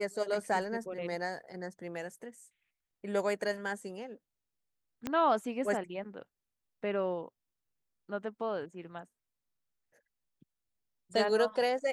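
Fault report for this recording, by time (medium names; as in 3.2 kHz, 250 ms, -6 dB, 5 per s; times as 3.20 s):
5.07 s: pop -19 dBFS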